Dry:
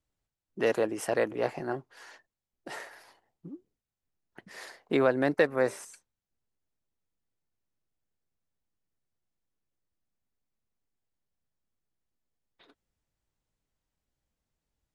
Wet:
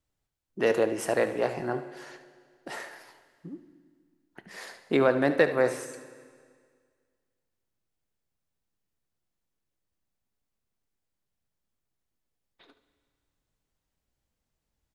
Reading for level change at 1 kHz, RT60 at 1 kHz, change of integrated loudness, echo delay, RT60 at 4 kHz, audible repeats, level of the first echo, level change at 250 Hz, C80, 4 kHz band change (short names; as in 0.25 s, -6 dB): +2.5 dB, 1.9 s, +2.0 dB, 73 ms, 1.8 s, 1, -13.0 dB, +2.5 dB, 13.5 dB, +2.5 dB